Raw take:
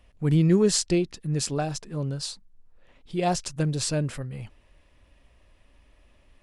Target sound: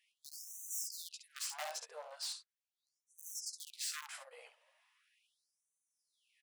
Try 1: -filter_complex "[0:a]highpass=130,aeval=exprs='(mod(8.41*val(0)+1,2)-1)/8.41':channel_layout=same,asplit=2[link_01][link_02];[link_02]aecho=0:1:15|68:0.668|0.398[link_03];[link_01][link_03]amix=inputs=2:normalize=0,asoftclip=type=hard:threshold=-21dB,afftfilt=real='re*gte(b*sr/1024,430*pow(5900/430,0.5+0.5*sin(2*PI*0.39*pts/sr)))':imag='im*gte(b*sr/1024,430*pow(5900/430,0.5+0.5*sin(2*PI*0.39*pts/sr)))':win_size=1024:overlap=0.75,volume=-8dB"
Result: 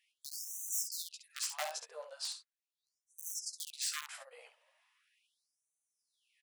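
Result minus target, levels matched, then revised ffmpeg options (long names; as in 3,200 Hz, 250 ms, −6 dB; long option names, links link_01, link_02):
hard clipping: distortion −7 dB
-filter_complex "[0:a]highpass=130,aeval=exprs='(mod(8.41*val(0)+1,2)-1)/8.41':channel_layout=same,asplit=2[link_01][link_02];[link_02]aecho=0:1:15|68:0.668|0.398[link_03];[link_01][link_03]amix=inputs=2:normalize=0,asoftclip=type=hard:threshold=-28.5dB,afftfilt=real='re*gte(b*sr/1024,430*pow(5900/430,0.5+0.5*sin(2*PI*0.39*pts/sr)))':imag='im*gte(b*sr/1024,430*pow(5900/430,0.5+0.5*sin(2*PI*0.39*pts/sr)))':win_size=1024:overlap=0.75,volume=-8dB"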